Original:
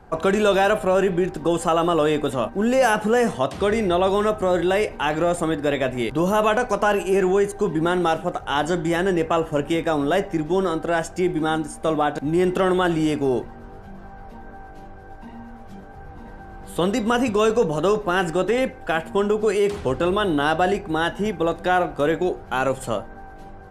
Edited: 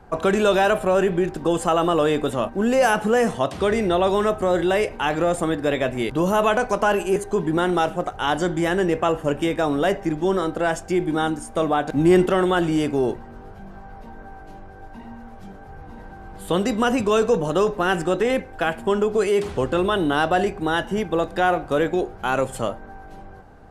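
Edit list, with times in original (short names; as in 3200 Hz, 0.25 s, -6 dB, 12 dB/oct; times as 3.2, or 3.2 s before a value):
7.16–7.44 cut
12.19–12.54 gain +4.5 dB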